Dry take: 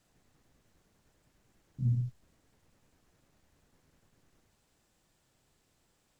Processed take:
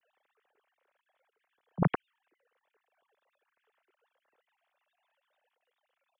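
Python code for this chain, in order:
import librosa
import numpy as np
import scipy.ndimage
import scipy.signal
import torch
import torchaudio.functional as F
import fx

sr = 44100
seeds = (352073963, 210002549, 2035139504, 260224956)

y = fx.sine_speech(x, sr)
y = fx.vibrato(y, sr, rate_hz=9.4, depth_cents=67.0)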